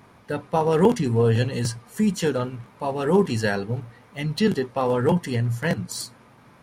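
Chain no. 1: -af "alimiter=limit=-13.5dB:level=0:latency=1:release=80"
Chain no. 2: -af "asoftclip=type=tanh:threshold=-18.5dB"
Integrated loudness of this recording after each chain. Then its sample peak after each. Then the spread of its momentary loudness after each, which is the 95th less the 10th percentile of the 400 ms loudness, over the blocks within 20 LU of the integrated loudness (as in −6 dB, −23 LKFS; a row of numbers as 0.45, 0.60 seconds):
−25.5, −27.0 LKFS; −13.5, −18.5 dBFS; 10, 9 LU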